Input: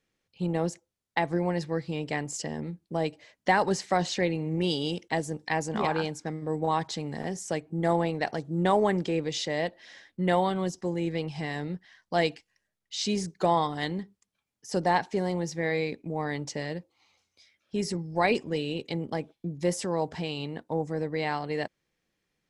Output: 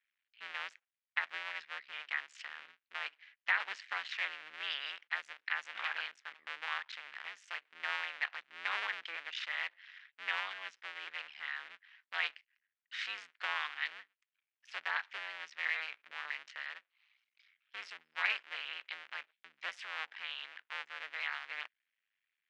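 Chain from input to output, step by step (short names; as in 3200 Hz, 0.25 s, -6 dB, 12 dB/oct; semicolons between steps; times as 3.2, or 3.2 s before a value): cycle switcher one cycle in 2, muted; Butterworth band-pass 2200 Hz, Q 1.3; gain +1 dB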